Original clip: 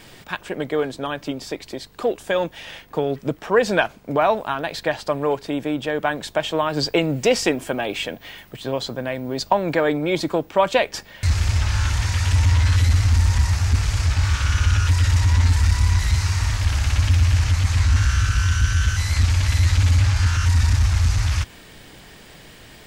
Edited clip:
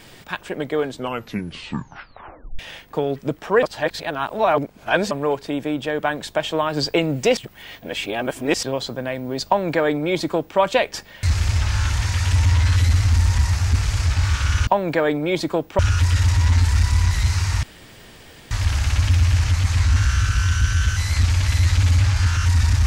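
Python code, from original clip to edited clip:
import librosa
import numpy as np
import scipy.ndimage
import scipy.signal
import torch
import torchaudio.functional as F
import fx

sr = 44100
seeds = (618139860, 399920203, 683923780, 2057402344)

y = fx.edit(x, sr, fx.tape_stop(start_s=0.88, length_s=1.71),
    fx.reverse_span(start_s=3.63, length_s=1.48),
    fx.reverse_span(start_s=7.37, length_s=1.26),
    fx.duplicate(start_s=9.47, length_s=1.12, to_s=14.67),
    fx.insert_room_tone(at_s=16.51, length_s=0.88), tone=tone)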